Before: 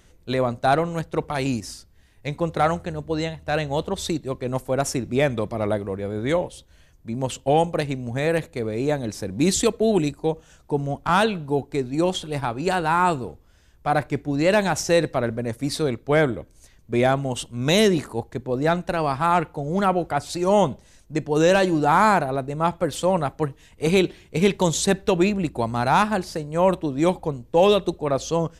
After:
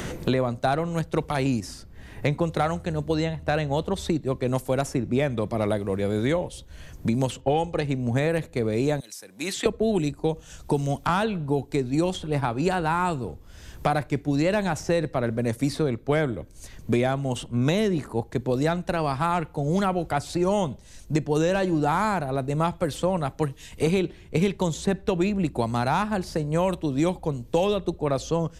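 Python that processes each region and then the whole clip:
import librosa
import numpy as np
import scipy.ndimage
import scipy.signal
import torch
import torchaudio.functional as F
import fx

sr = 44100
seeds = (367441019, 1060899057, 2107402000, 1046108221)

y = fx.chain(x, sr, fx.air_absorb(metres=64.0),
    fx.comb(ms=2.4, depth=0.4), at=(7.41, 7.84))
y = fx.chain(y, sr, fx.highpass(hz=110.0, slope=12),
    fx.differentiator(), at=(9.0, 9.66))
y = fx.low_shelf(y, sr, hz=200.0, db=6.0)
y = fx.band_squash(y, sr, depth_pct=100)
y = y * librosa.db_to_amplitude(-5.0)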